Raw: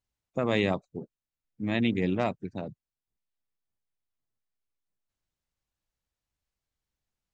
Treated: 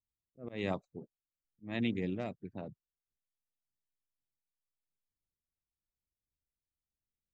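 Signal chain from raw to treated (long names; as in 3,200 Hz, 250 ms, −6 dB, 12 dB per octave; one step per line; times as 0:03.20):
volume swells 219 ms
rotating-speaker cabinet horn 1 Hz
low-pass that shuts in the quiet parts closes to 430 Hz, open at −28 dBFS
level −6 dB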